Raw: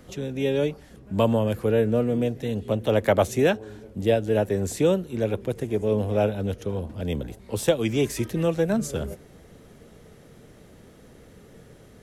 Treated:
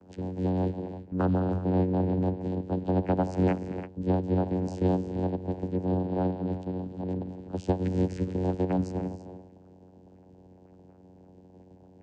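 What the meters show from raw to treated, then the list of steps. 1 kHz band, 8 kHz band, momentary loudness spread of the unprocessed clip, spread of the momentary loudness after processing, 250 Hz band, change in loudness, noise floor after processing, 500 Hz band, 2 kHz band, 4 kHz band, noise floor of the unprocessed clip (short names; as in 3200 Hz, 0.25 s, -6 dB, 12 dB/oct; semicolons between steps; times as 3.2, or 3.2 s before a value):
-2.0 dB, under -20 dB, 10 LU, 9 LU, -1.0 dB, -4.5 dB, -55 dBFS, -8.5 dB, -13.0 dB, under -15 dB, -51 dBFS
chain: bin magnitudes rounded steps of 30 dB; non-linear reverb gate 0.36 s rising, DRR 9 dB; vocoder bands 8, saw 92 Hz; in parallel at -9 dB: soft clip -18.5 dBFS, distortion -15 dB; on the sum: gain -5 dB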